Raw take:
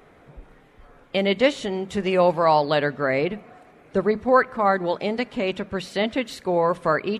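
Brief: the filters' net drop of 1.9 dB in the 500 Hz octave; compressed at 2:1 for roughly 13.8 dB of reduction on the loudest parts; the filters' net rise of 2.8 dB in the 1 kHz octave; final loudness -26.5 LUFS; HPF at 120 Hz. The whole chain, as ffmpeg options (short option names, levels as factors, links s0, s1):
-af "highpass=120,equalizer=f=500:t=o:g=-3.5,equalizer=f=1000:t=o:g=4.5,acompressor=threshold=0.0141:ratio=2,volume=2.24"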